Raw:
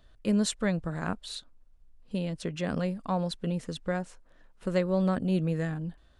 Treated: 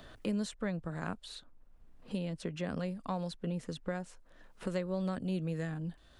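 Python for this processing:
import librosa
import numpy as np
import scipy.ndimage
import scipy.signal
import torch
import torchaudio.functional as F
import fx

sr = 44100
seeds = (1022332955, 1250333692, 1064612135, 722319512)

y = fx.band_squash(x, sr, depth_pct=70)
y = F.gain(torch.from_numpy(y), -7.0).numpy()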